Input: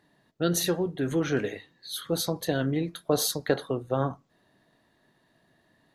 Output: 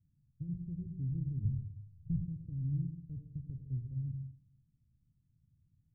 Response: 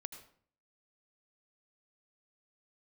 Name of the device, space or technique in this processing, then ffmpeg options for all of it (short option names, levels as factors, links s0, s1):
club heard from the street: -filter_complex "[0:a]alimiter=limit=0.0944:level=0:latency=1,lowpass=f=120:w=0.5412,lowpass=f=120:w=1.3066[s0];[1:a]atrim=start_sample=2205[s1];[s0][s1]afir=irnorm=-1:irlink=0,asplit=3[s2][s3][s4];[s2]afade=t=out:st=1.43:d=0.02[s5];[s3]asubboost=boost=7.5:cutoff=200,afade=t=in:st=1.43:d=0.02,afade=t=out:st=2.25:d=0.02[s6];[s4]afade=t=in:st=2.25:d=0.02[s7];[s5][s6][s7]amix=inputs=3:normalize=0,volume=3.35"